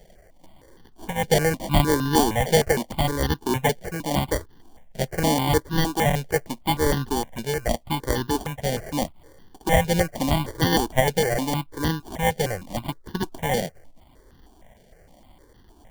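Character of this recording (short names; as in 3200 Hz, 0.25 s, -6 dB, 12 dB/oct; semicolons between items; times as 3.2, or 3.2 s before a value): aliases and images of a low sample rate 1300 Hz, jitter 0%; notches that jump at a steady rate 6.5 Hz 300–2300 Hz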